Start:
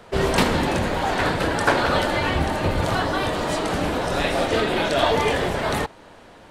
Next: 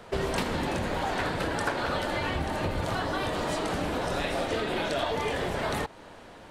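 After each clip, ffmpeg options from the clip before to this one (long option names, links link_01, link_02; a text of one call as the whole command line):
ffmpeg -i in.wav -af "acompressor=threshold=-25dB:ratio=5,volume=-1.5dB" out.wav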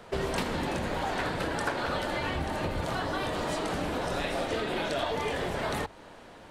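ffmpeg -i in.wav -af "bandreject=frequency=50:width_type=h:width=6,bandreject=frequency=100:width_type=h:width=6,volume=-1.5dB" out.wav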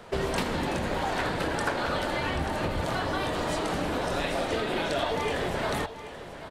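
ffmpeg -i in.wav -af "aecho=1:1:784:0.224,volume=2dB" out.wav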